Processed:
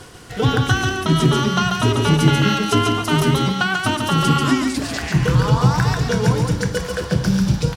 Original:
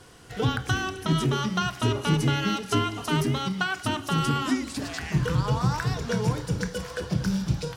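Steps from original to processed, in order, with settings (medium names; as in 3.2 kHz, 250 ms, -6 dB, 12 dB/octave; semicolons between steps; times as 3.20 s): reverse; upward compressor, threshold -37 dBFS; reverse; delay 140 ms -3.5 dB; trim +7 dB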